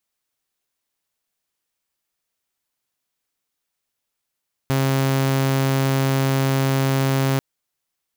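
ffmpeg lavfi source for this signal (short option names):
-f lavfi -i "aevalsrc='0.188*(2*mod(135*t,1)-1)':d=2.69:s=44100"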